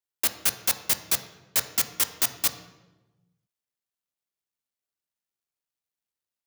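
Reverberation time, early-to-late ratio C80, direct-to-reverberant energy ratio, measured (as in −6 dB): 1.1 s, 13.0 dB, 7.5 dB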